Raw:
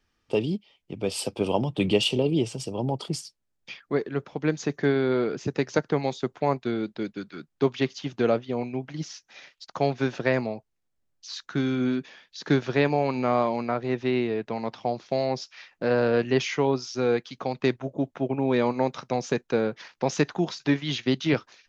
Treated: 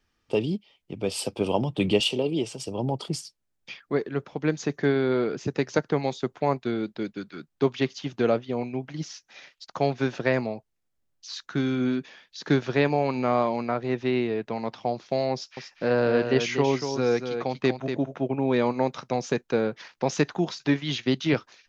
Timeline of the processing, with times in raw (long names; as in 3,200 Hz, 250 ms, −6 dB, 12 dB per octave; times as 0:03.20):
0:02.00–0:02.68: high-pass filter 280 Hz 6 dB per octave
0:15.33–0:18.19: single-tap delay 239 ms −7.5 dB